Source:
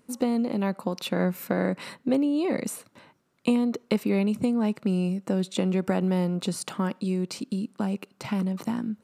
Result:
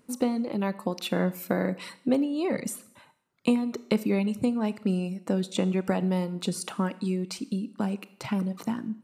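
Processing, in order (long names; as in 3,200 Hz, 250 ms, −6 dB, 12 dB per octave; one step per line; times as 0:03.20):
reverb reduction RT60 0.85 s
four-comb reverb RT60 0.69 s, combs from 25 ms, DRR 15 dB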